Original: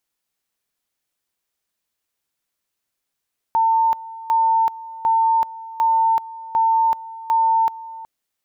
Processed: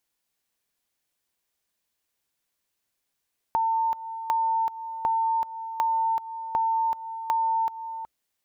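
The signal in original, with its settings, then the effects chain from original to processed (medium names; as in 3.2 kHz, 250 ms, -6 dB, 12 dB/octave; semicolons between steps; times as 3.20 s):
two-level tone 901 Hz -13.5 dBFS, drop 18 dB, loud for 0.38 s, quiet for 0.37 s, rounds 6
peaking EQ 62 Hz +2.5 dB 0.31 oct; band-stop 1.3 kHz, Q 17; compression 5:1, threshold -24 dBFS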